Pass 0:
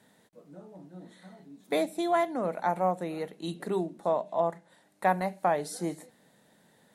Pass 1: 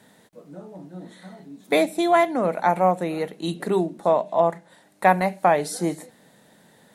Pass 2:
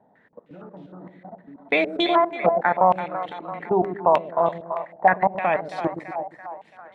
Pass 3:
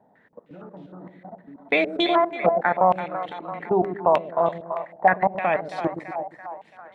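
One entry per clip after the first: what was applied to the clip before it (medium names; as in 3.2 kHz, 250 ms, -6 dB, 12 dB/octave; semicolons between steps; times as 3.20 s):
dynamic bell 2.4 kHz, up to +5 dB, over -49 dBFS, Q 2.6; trim +8 dB
level held to a coarse grid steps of 21 dB; on a send: two-band feedback delay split 520 Hz, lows 118 ms, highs 335 ms, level -8 dB; on the sum: step-sequenced low-pass 6.5 Hz 780–3300 Hz
dynamic bell 940 Hz, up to -3 dB, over -33 dBFS, Q 4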